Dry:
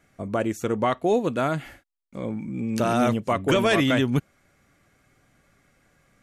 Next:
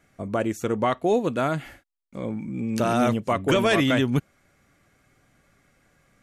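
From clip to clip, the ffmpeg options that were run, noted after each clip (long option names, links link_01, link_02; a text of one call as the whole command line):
ffmpeg -i in.wav -af anull out.wav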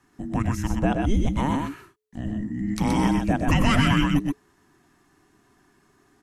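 ffmpeg -i in.wav -af "afreqshift=-430,aecho=1:1:100|124|127:0.178|0.631|0.141" out.wav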